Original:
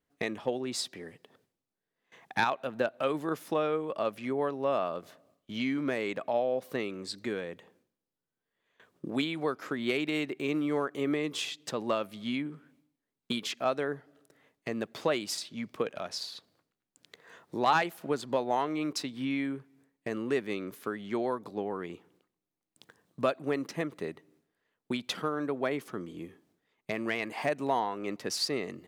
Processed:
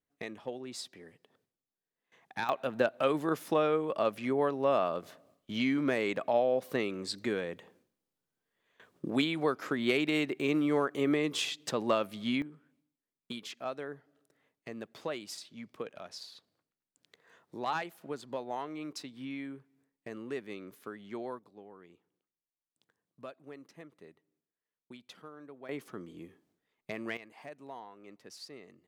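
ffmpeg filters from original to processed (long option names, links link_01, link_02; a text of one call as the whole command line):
ffmpeg -i in.wav -af "asetnsamples=nb_out_samples=441:pad=0,asendcmd='2.49 volume volume 1.5dB;12.42 volume volume -8.5dB;21.39 volume volume -17.5dB;25.69 volume volume -5.5dB;27.17 volume volume -17dB',volume=-8dB" out.wav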